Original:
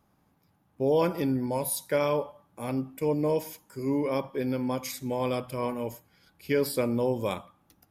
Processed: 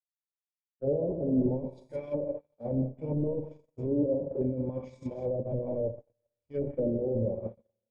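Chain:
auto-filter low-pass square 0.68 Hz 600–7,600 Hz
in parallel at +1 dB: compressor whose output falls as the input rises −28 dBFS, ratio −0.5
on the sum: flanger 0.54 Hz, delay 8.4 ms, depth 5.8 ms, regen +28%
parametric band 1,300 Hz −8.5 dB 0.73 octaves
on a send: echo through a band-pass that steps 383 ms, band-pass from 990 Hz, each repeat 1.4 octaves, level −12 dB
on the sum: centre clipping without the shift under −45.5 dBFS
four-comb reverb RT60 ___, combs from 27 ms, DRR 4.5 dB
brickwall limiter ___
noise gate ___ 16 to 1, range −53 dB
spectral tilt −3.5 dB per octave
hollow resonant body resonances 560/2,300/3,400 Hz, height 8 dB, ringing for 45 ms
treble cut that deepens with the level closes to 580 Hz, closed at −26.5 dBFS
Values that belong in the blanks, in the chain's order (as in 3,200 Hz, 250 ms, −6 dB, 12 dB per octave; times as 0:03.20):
1.9 s, −23.5 dBFS, −29 dBFS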